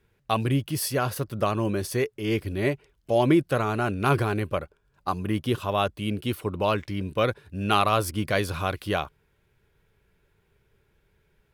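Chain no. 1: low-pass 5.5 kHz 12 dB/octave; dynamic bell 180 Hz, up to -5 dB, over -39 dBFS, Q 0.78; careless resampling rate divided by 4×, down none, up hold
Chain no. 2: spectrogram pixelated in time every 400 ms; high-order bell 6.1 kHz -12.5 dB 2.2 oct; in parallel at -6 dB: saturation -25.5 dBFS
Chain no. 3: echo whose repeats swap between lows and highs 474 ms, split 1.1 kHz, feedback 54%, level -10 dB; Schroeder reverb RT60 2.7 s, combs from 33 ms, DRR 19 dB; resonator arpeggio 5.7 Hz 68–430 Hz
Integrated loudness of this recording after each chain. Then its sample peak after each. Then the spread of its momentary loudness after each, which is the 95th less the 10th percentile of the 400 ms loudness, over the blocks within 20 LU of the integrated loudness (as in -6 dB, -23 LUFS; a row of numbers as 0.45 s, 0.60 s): -28.0 LUFS, -28.0 LUFS, -37.5 LUFS; -7.5 dBFS, -12.5 dBFS, -17.5 dBFS; 9 LU, 9 LU, 13 LU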